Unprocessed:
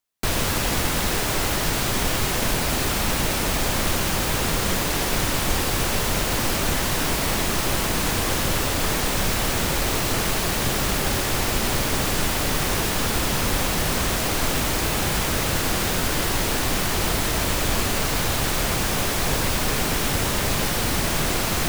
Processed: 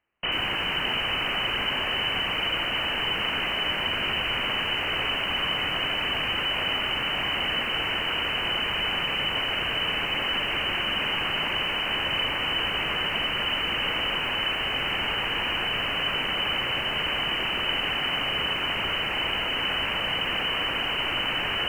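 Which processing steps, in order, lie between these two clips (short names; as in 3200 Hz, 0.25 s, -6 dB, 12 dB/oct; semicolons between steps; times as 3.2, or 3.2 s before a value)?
bell 260 Hz -5.5 dB 0.37 oct; in parallel at -6 dB: sine folder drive 19 dB, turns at -8.5 dBFS; on the sum: inverted band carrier 3000 Hz; lo-fi delay 86 ms, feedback 35%, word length 6-bit, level -9 dB; gain -8 dB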